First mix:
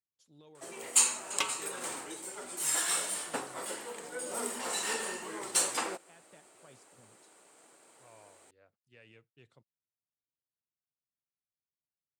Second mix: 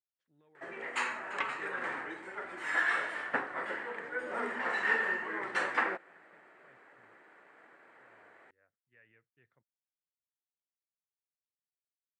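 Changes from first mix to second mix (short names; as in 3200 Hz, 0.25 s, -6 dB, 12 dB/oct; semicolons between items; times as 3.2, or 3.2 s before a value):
speech -11.0 dB; second sound -5.5 dB; master: add synth low-pass 1800 Hz, resonance Q 4.1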